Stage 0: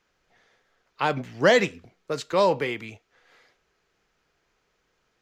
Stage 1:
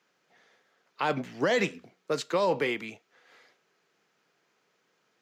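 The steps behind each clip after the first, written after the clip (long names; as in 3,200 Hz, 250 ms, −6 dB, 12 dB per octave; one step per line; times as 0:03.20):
high-pass filter 150 Hz 24 dB per octave
brickwall limiter −17 dBFS, peak gain reduction 11 dB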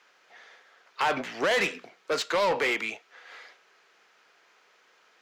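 mid-hump overdrive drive 19 dB, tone 3,600 Hz, clips at −16.5 dBFS
low-shelf EQ 290 Hz −9.5 dB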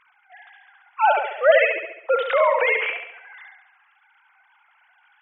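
three sine waves on the formant tracks
on a send: flutter between parallel walls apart 11.9 metres, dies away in 0.74 s
on the sum: level +7 dB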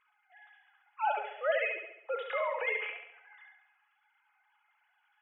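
tuned comb filter 420 Hz, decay 0.24 s, harmonics all, mix 80%
level −2.5 dB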